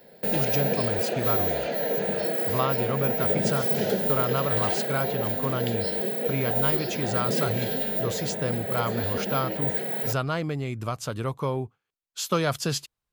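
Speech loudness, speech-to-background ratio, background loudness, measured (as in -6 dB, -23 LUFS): -30.5 LUFS, -5.0 dB, -25.5 LUFS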